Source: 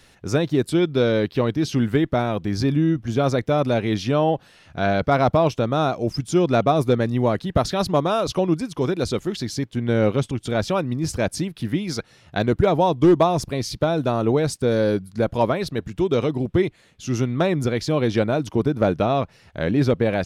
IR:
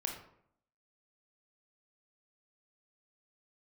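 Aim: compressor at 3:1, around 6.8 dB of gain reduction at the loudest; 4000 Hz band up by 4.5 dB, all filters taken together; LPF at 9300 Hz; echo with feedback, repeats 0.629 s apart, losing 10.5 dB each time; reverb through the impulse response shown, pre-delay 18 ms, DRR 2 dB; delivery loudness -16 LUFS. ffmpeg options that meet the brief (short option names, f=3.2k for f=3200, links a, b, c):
-filter_complex "[0:a]lowpass=9.3k,equalizer=f=4k:t=o:g=5.5,acompressor=threshold=-20dB:ratio=3,aecho=1:1:629|1258|1887:0.299|0.0896|0.0269,asplit=2[a][b];[1:a]atrim=start_sample=2205,adelay=18[c];[b][c]afir=irnorm=-1:irlink=0,volume=-3dB[d];[a][d]amix=inputs=2:normalize=0,volume=6.5dB"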